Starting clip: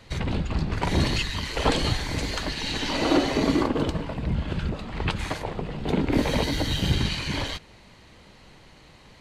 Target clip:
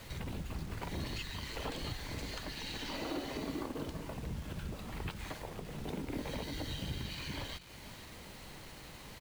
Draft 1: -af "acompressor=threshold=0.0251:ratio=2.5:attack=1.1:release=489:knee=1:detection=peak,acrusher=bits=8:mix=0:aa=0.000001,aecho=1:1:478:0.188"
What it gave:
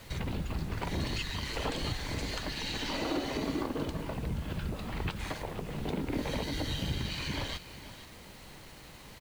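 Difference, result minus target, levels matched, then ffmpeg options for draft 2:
compression: peak gain reduction -6 dB
-af "acompressor=threshold=0.00794:ratio=2.5:attack=1.1:release=489:knee=1:detection=peak,acrusher=bits=8:mix=0:aa=0.000001,aecho=1:1:478:0.188"

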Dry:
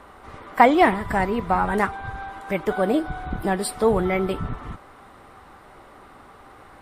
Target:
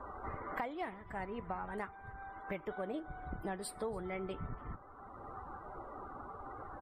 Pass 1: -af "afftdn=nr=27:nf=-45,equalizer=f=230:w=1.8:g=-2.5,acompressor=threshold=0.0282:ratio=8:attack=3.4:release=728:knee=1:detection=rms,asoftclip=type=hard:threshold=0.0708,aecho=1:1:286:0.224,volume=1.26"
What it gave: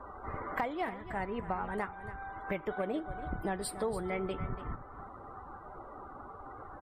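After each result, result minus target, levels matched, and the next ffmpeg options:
echo-to-direct +11.5 dB; compression: peak gain reduction -5.5 dB
-af "afftdn=nr=27:nf=-45,equalizer=f=230:w=1.8:g=-2.5,acompressor=threshold=0.0282:ratio=8:attack=3.4:release=728:knee=1:detection=rms,asoftclip=type=hard:threshold=0.0708,aecho=1:1:286:0.0596,volume=1.26"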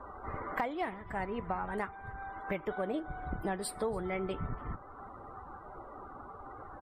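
compression: peak gain reduction -5.5 dB
-af "afftdn=nr=27:nf=-45,equalizer=f=230:w=1.8:g=-2.5,acompressor=threshold=0.0141:ratio=8:attack=3.4:release=728:knee=1:detection=rms,asoftclip=type=hard:threshold=0.0708,aecho=1:1:286:0.0596,volume=1.26"

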